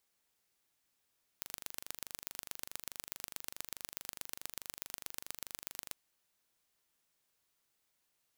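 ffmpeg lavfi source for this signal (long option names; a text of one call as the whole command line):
ffmpeg -f lavfi -i "aevalsrc='0.266*eq(mod(n,1785),0)*(0.5+0.5*eq(mod(n,5355),0))':duration=4.53:sample_rate=44100" out.wav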